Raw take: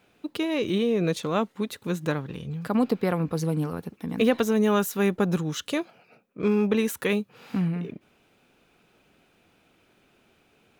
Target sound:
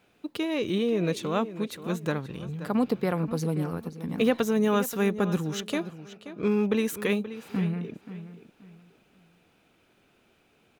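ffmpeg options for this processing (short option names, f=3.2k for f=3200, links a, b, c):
-filter_complex "[0:a]asplit=2[a][b];[b]adelay=529,lowpass=f=4.6k:p=1,volume=-13dB,asplit=2[c][d];[d]adelay=529,lowpass=f=4.6k:p=1,volume=0.28,asplit=2[e][f];[f]adelay=529,lowpass=f=4.6k:p=1,volume=0.28[g];[a][c][e][g]amix=inputs=4:normalize=0,volume=-2dB"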